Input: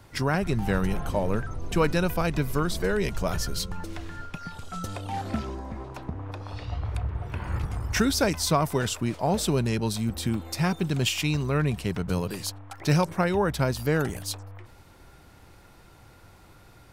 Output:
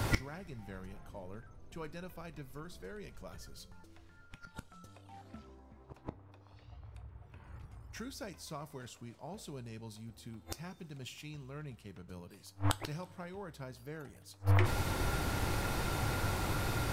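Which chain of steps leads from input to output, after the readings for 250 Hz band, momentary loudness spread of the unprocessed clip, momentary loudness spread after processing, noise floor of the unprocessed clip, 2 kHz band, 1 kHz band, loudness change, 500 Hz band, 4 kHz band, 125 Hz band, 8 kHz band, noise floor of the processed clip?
-16.0 dB, 13 LU, 19 LU, -53 dBFS, -10.5 dB, -11.0 dB, -12.0 dB, -16.5 dB, -13.0 dB, -10.0 dB, -13.0 dB, -60 dBFS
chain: flipped gate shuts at -30 dBFS, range -39 dB; two-slope reverb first 0.23 s, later 2.7 s, from -19 dB, DRR 12 dB; gain +17.5 dB

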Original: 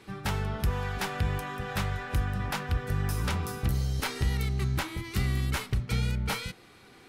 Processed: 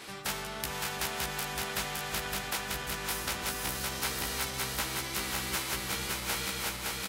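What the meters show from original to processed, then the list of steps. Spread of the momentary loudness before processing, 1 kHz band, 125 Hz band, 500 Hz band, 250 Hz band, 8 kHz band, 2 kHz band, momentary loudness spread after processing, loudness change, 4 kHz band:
3 LU, -0.5 dB, -15.0 dB, -2.0 dB, -7.0 dB, +8.5 dB, +1.5 dB, 2 LU, -2.0 dB, +5.0 dB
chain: regenerating reverse delay 0.282 s, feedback 78%, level -3 dB; HPF 64 Hz; bell 98 Hz -14 dB 2.2 oct; doubler 15 ms -4 dB; spectral compressor 2:1

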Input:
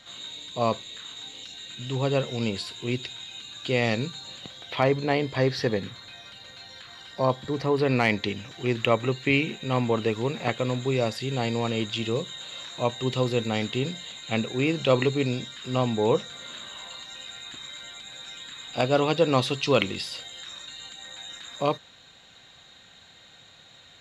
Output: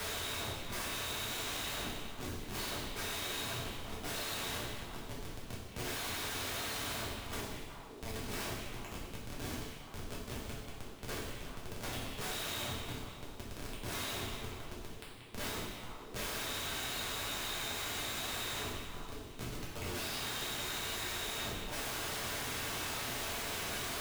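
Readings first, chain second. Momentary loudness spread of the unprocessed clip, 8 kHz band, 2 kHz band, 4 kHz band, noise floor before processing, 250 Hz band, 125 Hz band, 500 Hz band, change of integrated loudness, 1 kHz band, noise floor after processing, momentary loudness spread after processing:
16 LU, +2.5 dB, -8.0 dB, -6.5 dB, -53 dBFS, -17.0 dB, -15.5 dB, -19.0 dB, -12.0 dB, -11.5 dB, -49 dBFS, 9 LU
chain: treble ducked by the level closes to 1400 Hz, closed at -23 dBFS; added noise pink -41 dBFS; bell 250 Hz +8.5 dB 0.29 oct; reverse; compressor 4:1, threshold -34 dBFS, peak gain reduction 16.5 dB; reverse; differentiator; Schmitt trigger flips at -43.5 dBFS; on a send: delay with a stepping band-pass 0.183 s, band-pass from 2600 Hz, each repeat -1.4 oct, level -7.5 dB; on the sum: two-slope reverb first 0.83 s, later 2.3 s, from -21 dB, DRR -6 dB; three-band squash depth 70%; gain +1 dB

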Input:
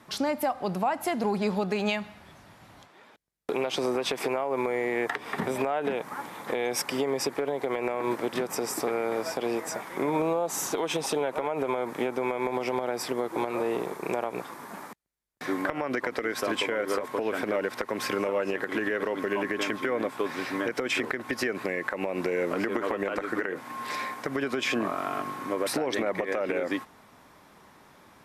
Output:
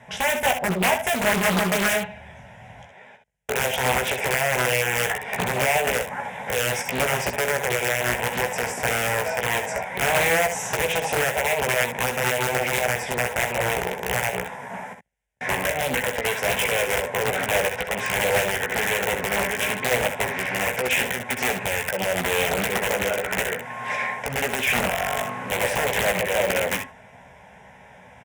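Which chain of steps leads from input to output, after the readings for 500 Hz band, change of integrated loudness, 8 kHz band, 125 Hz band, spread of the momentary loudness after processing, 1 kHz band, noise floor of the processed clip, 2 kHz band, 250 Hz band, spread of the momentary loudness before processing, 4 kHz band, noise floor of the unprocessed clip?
+3.5 dB, +6.5 dB, +10.5 dB, +10.0 dB, 6 LU, +6.5 dB, -48 dBFS, +11.0 dB, -1.5 dB, 5 LU, +9.0 dB, -55 dBFS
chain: one-sided fold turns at -18.5 dBFS; low shelf 150 Hz +3 dB; in parallel at -1.5 dB: limiter -20 dBFS, peak gain reduction 7 dB; on the sum: LPF 6500 Hz 12 dB/oct; wrapped overs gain 16 dB; HPF 49 Hz 12 dB/oct; fixed phaser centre 1200 Hz, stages 6; on a send: early reflections 16 ms -5 dB, 65 ms -9 dB, 77 ms -11 dB; on the sum: Doppler distortion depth 0.67 ms; gain +3.5 dB

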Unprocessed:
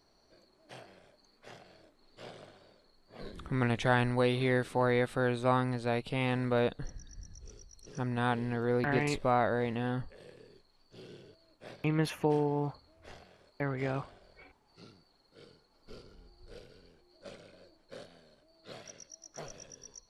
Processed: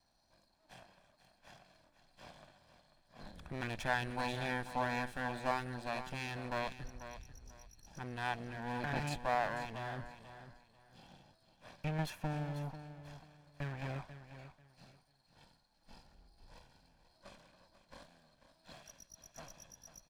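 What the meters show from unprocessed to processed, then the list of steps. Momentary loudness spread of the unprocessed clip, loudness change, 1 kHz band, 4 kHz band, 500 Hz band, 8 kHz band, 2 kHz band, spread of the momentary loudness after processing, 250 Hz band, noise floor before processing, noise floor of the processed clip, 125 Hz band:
21 LU, -8.5 dB, -4.5 dB, -4.5 dB, -11.5 dB, -4.5 dB, -4.5 dB, 22 LU, -11.0 dB, -68 dBFS, -73 dBFS, -8.5 dB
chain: minimum comb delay 1.2 ms; feedback echo 0.491 s, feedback 24%, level -12 dB; gain -5.5 dB

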